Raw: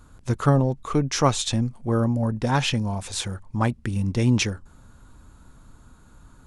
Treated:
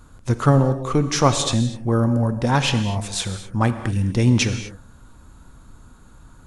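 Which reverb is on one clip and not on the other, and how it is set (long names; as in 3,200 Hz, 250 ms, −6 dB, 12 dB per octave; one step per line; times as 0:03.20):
reverb whose tail is shaped and stops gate 270 ms flat, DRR 9 dB
level +3 dB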